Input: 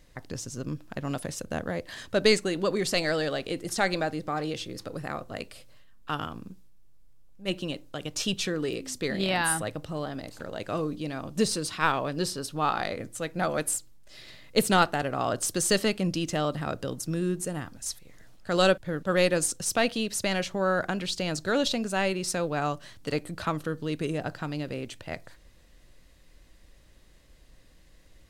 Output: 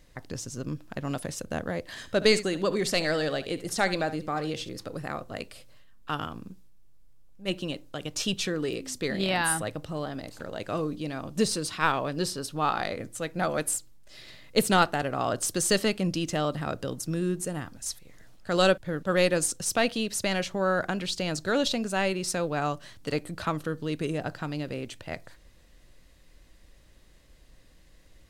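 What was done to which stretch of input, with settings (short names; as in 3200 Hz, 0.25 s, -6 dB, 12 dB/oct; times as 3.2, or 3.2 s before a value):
1.86–4.69 echo 71 ms -15 dB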